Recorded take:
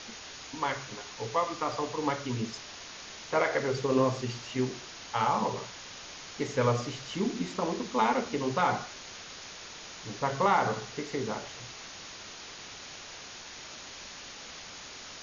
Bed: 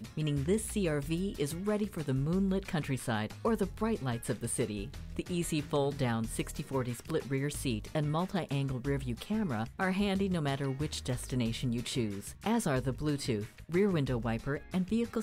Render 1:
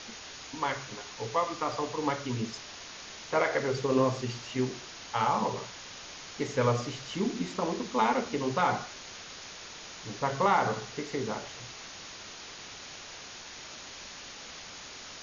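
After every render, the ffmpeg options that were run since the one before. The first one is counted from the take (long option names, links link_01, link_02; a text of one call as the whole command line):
ffmpeg -i in.wav -af anull out.wav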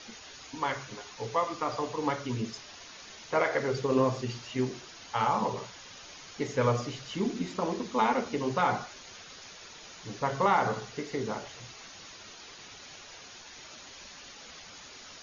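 ffmpeg -i in.wav -af "afftdn=noise_reduction=7:noise_floor=-46" out.wav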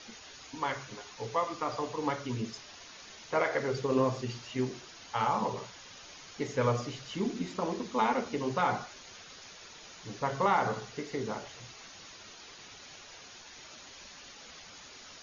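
ffmpeg -i in.wav -af "volume=-2dB" out.wav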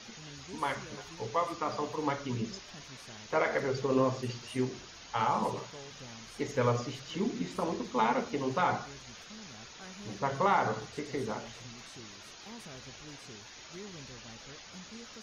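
ffmpeg -i in.wav -i bed.wav -filter_complex "[1:a]volume=-18.5dB[link_01];[0:a][link_01]amix=inputs=2:normalize=0" out.wav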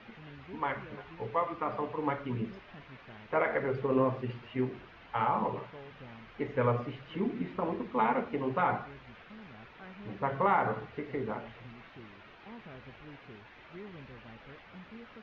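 ffmpeg -i in.wav -af "lowpass=frequency=2600:width=0.5412,lowpass=frequency=2600:width=1.3066" out.wav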